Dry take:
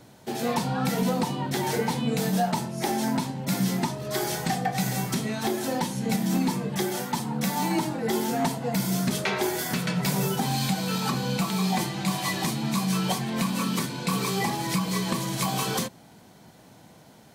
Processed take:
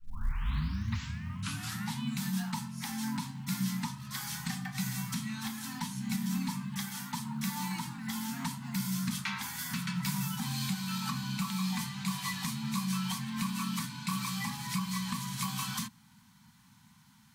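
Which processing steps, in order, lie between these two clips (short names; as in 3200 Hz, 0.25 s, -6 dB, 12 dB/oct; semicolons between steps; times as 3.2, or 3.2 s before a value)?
tape start at the beginning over 2.01 s; companded quantiser 8-bit; elliptic band-stop 230–970 Hz, stop band 60 dB; gain -6.5 dB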